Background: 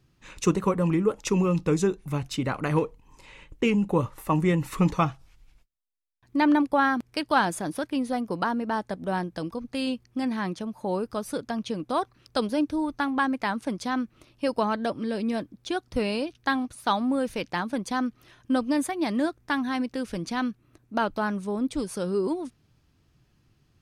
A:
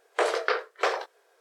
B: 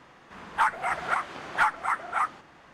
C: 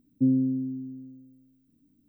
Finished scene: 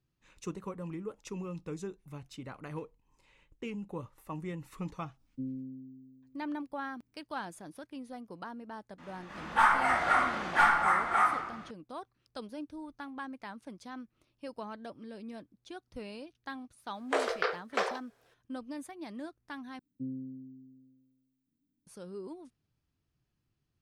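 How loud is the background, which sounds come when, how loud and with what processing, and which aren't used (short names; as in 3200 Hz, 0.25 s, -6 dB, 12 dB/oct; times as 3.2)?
background -16.5 dB
5.17 add C -16 dB
8.98 add B -5 dB + shoebox room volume 410 m³, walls mixed, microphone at 2.4 m
16.94 add A -5 dB
19.79 replace with C -16.5 dB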